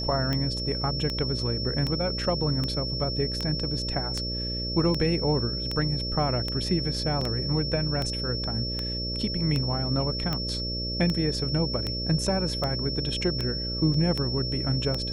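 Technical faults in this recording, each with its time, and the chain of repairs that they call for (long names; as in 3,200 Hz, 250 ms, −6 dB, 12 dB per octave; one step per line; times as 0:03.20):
mains buzz 60 Hz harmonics 10 −33 dBFS
scratch tick 78 rpm −15 dBFS
whistle 5,400 Hz −31 dBFS
0:07.21: drop-out 4.1 ms
0:13.94: drop-out 3 ms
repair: click removal
hum removal 60 Hz, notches 10
notch filter 5,400 Hz, Q 30
repair the gap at 0:07.21, 4.1 ms
repair the gap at 0:13.94, 3 ms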